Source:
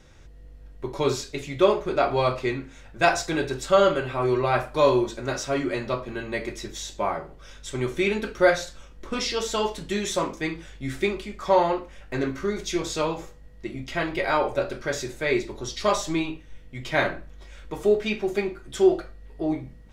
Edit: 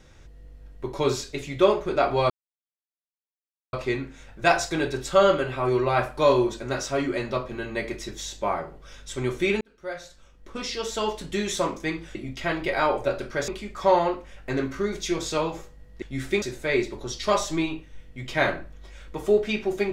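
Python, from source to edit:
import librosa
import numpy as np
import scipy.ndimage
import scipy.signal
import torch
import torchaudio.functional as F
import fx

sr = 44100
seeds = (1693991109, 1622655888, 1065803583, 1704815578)

y = fx.edit(x, sr, fx.insert_silence(at_s=2.3, length_s=1.43),
    fx.fade_in_span(start_s=8.18, length_s=1.73),
    fx.swap(start_s=10.72, length_s=0.4, other_s=13.66, other_length_s=1.33), tone=tone)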